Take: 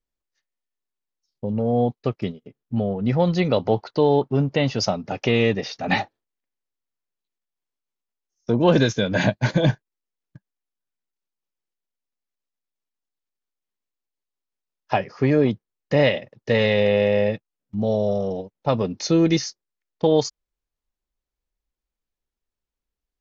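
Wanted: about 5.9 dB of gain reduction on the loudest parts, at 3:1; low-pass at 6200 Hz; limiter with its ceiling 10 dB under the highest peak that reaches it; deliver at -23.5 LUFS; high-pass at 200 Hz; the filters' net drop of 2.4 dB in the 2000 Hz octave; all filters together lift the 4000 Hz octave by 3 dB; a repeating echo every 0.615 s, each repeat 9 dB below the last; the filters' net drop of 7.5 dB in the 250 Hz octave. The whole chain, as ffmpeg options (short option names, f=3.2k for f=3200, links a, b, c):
-af "highpass=200,lowpass=6.2k,equalizer=f=250:t=o:g=-8,equalizer=f=2k:t=o:g=-4.5,equalizer=f=4k:t=o:g=6,acompressor=threshold=-23dB:ratio=3,alimiter=limit=-19dB:level=0:latency=1,aecho=1:1:615|1230|1845|2460:0.355|0.124|0.0435|0.0152,volume=7dB"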